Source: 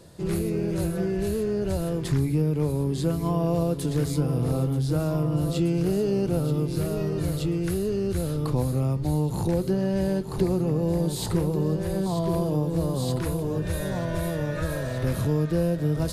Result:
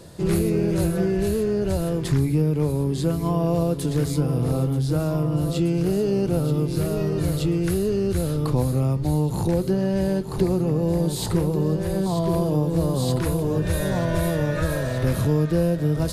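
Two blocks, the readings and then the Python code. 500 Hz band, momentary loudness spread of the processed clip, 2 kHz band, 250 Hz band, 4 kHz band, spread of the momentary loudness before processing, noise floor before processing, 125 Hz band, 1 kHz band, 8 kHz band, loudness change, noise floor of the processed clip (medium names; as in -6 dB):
+3.0 dB, 2 LU, +4.0 dB, +3.0 dB, +3.0 dB, 4 LU, -31 dBFS, +3.0 dB, +3.0 dB, +3.5 dB, +3.0 dB, -28 dBFS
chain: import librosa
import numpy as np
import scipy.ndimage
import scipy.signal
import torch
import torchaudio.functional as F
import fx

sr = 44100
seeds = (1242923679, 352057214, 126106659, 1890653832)

y = fx.rider(x, sr, range_db=10, speed_s=2.0)
y = y * 10.0 ** (3.0 / 20.0)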